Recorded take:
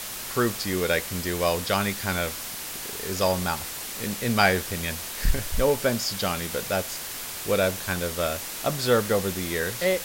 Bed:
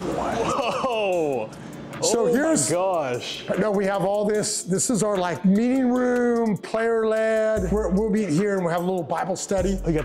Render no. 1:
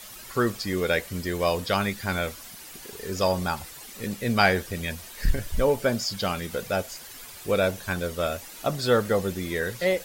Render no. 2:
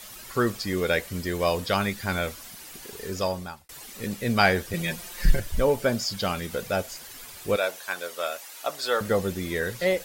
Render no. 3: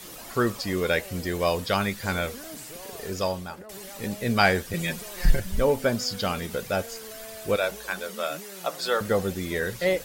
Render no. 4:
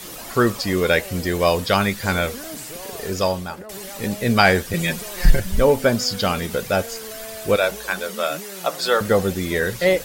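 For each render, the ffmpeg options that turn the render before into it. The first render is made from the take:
-af "afftdn=nr=11:nf=-35"
-filter_complex "[0:a]asettb=1/sr,asplit=3[s0][s1][s2];[s0]atrim=end=4.734[s3];[s1]atrim=start=4.73:end=5.4,asetpts=PTS-STARTPTS,afade=t=in:d=0.004:c=qsin,afade=t=out:st=0.666:d=0.004:c=qsin,aecho=1:1:5.7:0.9,atrim=end_sample=29547[s4];[s2]atrim=start=5.396[s5];[s3][s4]acrossfade=d=0.004:c1=hsin:c2=qsin[s6];[s6][s5]acrossfade=d=0.004:c1=qsin:c2=hsin,asettb=1/sr,asplit=3[s7][s8][s9];[s7]atrim=end=7.564[s10];[s8]atrim=start=7.56:end=9.01,asetpts=PTS-STARTPTS,afade=t=in:d=0.004:c=qsin,afade=t=out:st=1.446:d=0.004:c=qsin,highpass=610[s11];[s9]atrim=start=9.006[s12];[s10][s11]acrossfade=d=0.004:c1=hsin:c2=qsin[s13];[s13][s12]acrossfade=d=0.004:c1=qsin:c2=hsin,asplit=2[s14][s15];[s14]atrim=end=3.69,asetpts=PTS-STARTPTS,afade=t=out:st=3.04:d=0.65[s16];[s15]atrim=start=3.69,asetpts=PTS-STARTPTS,afade=t=in:d=0.004:c=hsin[s17];[s16][s17]concat=n=2:v=0:a=1"
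-filter_complex "[1:a]volume=0.075[s0];[0:a][s0]amix=inputs=2:normalize=0"
-af "volume=2.11,alimiter=limit=0.891:level=0:latency=1"

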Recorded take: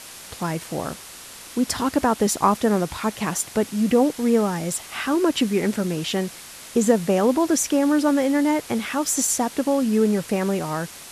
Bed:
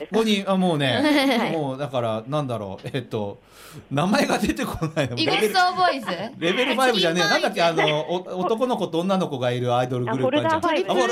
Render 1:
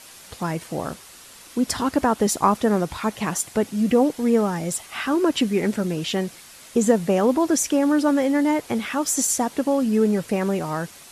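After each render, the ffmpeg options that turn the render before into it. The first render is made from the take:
-af "afftdn=nr=6:nf=-41"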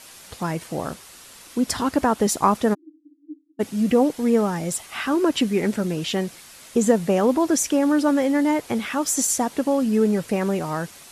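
-filter_complex "[0:a]asplit=3[s0][s1][s2];[s0]afade=t=out:st=2.73:d=0.02[s3];[s1]asuperpass=centerf=300:order=12:qfactor=5.9,afade=t=in:st=2.73:d=0.02,afade=t=out:st=3.59:d=0.02[s4];[s2]afade=t=in:st=3.59:d=0.02[s5];[s3][s4][s5]amix=inputs=3:normalize=0"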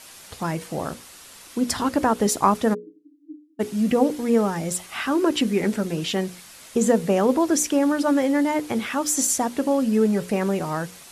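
-af "bandreject=f=60:t=h:w=6,bandreject=f=120:t=h:w=6,bandreject=f=180:t=h:w=6,bandreject=f=240:t=h:w=6,bandreject=f=300:t=h:w=6,bandreject=f=360:t=h:w=6,bandreject=f=420:t=h:w=6,bandreject=f=480:t=h:w=6,bandreject=f=540:t=h:w=6"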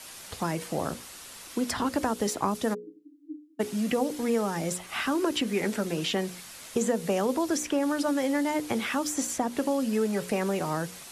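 -filter_complex "[0:a]acrossover=split=220|520|3200[s0][s1][s2][s3];[s0]acompressor=threshold=0.0141:ratio=4[s4];[s1]acompressor=threshold=0.0282:ratio=4[s5];[s2]acompressor=threshold=0.0316:ratio=4[s6];[s3]acompressor=threshold=0.02:ratio=4[s7];[s4][s5][s6][s7]amix=inputs=4:normalize=0"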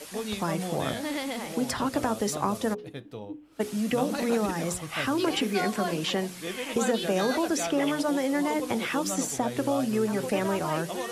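-filter_complex "[1:a]volume=0.211[s0];[0:a][s0]amix=inputs=2:normalize=0"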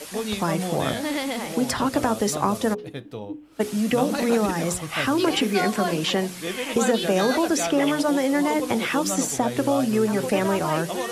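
-af "volume=1.78"

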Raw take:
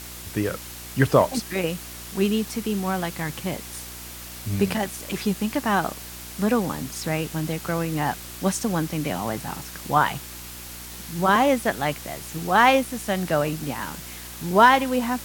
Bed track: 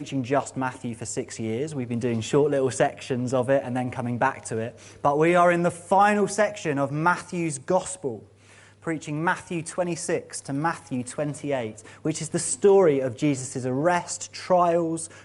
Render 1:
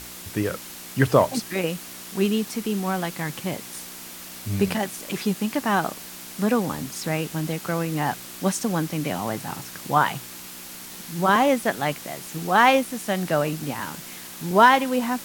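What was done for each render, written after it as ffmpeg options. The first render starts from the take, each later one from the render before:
-af "bandreject=f=60:t=h:w=4,bandreject=f=120:t=h:w=4"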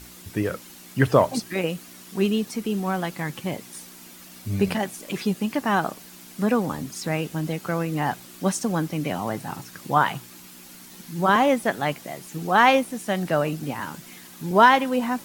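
-af "afftdn=nr=8:nf=-40"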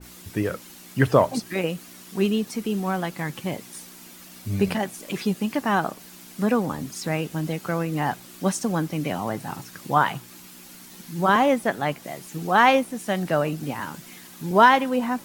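-af "adynamicequalizer=threshold=0.02:dfrequency=2100:dqfactor=0.7:tfrequency=2100:tqfactor=0.7:attack=5:release=100:ratio=0.375:range=2:mode=cutabove:tftype=highshelf"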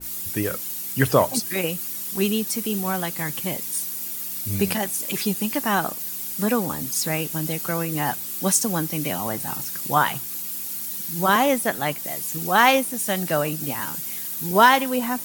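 -af "aemphasis=mode=production:type=75fm"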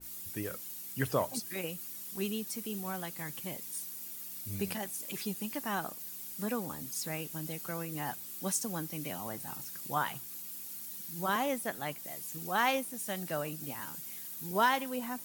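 -af "volume=0.224"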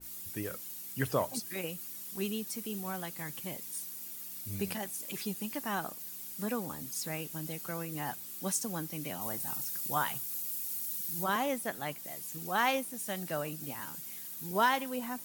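-filter_complex "[0:a]asettb=1/sr,asplit=3[s0][s1][s2];[s0]atrim=end=9.214[s3];[s1]atrim=start=9.21:end=11.24,asetpts=PTS-STARTPTS,afade=t=in:d=0.004:c=qsin,afade=t=out:st=2.026:d=0.004:c=qsin,highshelf=f=5300:g=7[s4];[s2]atrim=start=11.236[s5];[s3][s4]acrossfade=d=0.004:c1=hsin:c2=qsin[s6];[s6][s5]acrossfade=d=0.004:c1=qsin:c2=hsin"

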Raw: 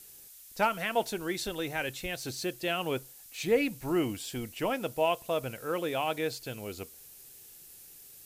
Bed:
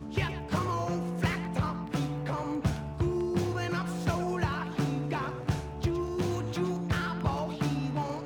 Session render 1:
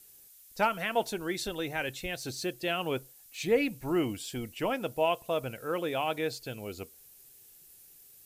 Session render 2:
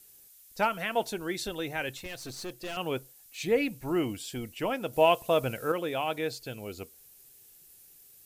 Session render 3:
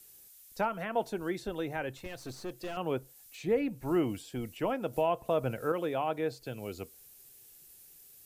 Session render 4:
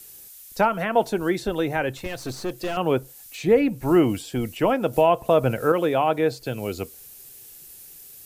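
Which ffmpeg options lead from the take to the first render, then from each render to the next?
-af "afftdn=nr=6:nf=-52"
-filter_complex "[0:a]asettb=1/sr,asplit=3[s0][s1][s2];[s0]atrim=end=1.974[s3];[s1]atrim=start=1.97:end=2.77,asetpts=PTS-STARTPTS,afade=t=in:d=0.004:c=qsin,afade=t=out:st=0.796:d=0.004:c=qsin,aeval=exprs='(tanh(50.1*val(0)+0.45)-tanh(0.45))/50.1':c=same[s4];[s2]atrim=start=2.766[s5];[s3][s4]acrossfade=d=0.004:c1=hsin:c2=qsin[s6];[s6][s5]acrossfade=d=0.004:c1=qsin:c2=hsin,asettb=1/sr,asplit=3[s7][s8][s9];[s7]atrim=end=4.934[s10];[s8]atrim=start=4.93:end=5.72,asetpts=PTS-STARTPTS,afade=t=in:d=0.004:c=qsin,afade=t=out:st=0.786:d=0.004:c=qsin,acontrast=40[s11];[s9]atrim=start=5.716[s12];[s10][s11]acrossfade=d=0.004:c1=hsin:c2=qsin[s13];[s13][s12]acrossfade=d=0.004:c1=qsin:c2=hsin"
-filter_complex "[0:a]acrossover=split=140|1600[s0][s1][s2];[s1]alimiter=limit=0.106:level=0:latency=1:release=138[s3];[s2]acompressor=threshold=0.00398:ratio=10[s4];[s0][s3][s4]amix=inputs=3:normalize=0"
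-af "volume=3.55"

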